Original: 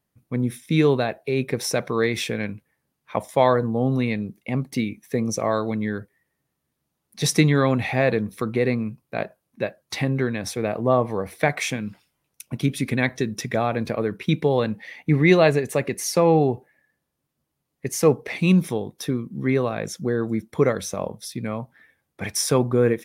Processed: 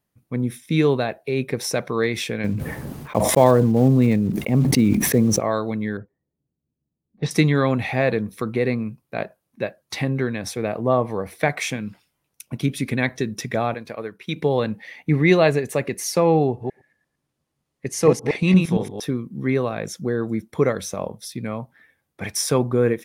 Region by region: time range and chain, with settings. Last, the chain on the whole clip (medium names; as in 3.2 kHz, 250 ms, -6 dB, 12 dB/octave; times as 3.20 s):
2.44–5.40 s: block-companded coder 5-bit + tilt shelf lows +7 dB, about 910 Hz + decay stretcher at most 24 dB/s
5.97–7.31 s: low-pass 2.6 kHz + level-controlled noise filter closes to 310 Hz, open at -25 dBFS
13.74–14.36 s: bass shelf 400 Hz -9.5 dB + short-mantissa float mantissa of 8-bit + upward expansion, over -35 dBFS
16.47–19.03 s: chunks repeated in reverse 115 ms, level -3.5 dB + low-pass 9.8 kHz
whole clip: none